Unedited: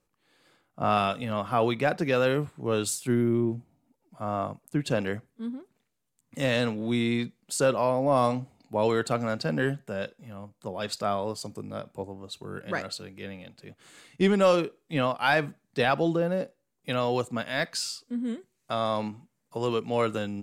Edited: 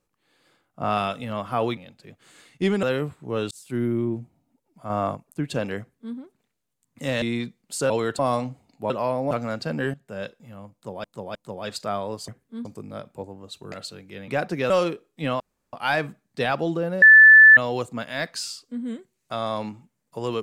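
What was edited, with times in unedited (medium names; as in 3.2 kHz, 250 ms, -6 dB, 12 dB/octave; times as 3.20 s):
1.77–2.19 s: swap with 13.36–14.42 s
2.87–3.19 s: fade in
4.26–4.51 s: gain +4.5 dB
5.15–5.52 s: copy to 11.45 s
6.58–7.01 s: delete
7.69–8.10 s: swap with 8.81–9.10 s
9.73–9.99 s: fade in, from -15.5 dB
10.52–10.83 s: loop, 3 plays
12.52–12.80 s: delete
15.12 s: insert room tone 0.33 s
16.41–16.96 s: bleep 1.75 kHz -6.5 dBFS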